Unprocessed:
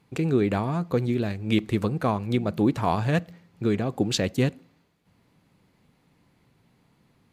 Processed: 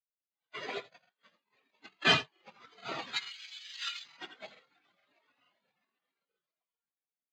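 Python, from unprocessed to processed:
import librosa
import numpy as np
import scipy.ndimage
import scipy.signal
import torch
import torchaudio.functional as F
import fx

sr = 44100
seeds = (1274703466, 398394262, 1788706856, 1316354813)

p1 = scipy.signal.sosfilt(scipy.signal.cheby1(4, 1.0, [620.0, 2100.0], 'bandpass', fs=sr, output='sos'), x)
p2 = np.clip(p1, -10.0 ** (-26.5 / 20.0), 10.0 ** (-26.5 / 20.0))
p3 = p1 + F.gain(torch.from_numpy(p2), -6.0).numpy()
p4 = fx.rotary_switch(p3, sr, hz=0.9, then_hz=6.0, switch_at_s=2.4)
p5 = fx.echo_swell(p4, sr, ms=133, loudest=8, wet_db=-15)
p6 = fx.noise_vocoder(p5, sr, seeds[0], bands=1)
p7 = np.repeat(scipy.signal.resample_poly(p6, 1, 4), 4)[:len(p6)]
p8 = fx.tilt_shelf(p7, sr, db=-7.0, hz=1100.0, at=(3.16, 4.04))
p9 = p8 + 10.0 ** (-4.5 / 20.0) * np.pad(p8, (int(83 * sr / 1000.0), 0))[:len(p8)]
p10 = 10.0 ** (-21.5 / 20.0) * np.tanh(p9 / 10.0 ** (-21.5 / 20.0))
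p11 = fx.buffer_crackle(p10, sr, first_s=1.0, period_s=0.44, block=2048, kind='repeat')
p12 = fx.spectral_expand(p11, sr, expansion=4.0)
y = F.gain(torch.from_numpy(p12), 8.5).numpy()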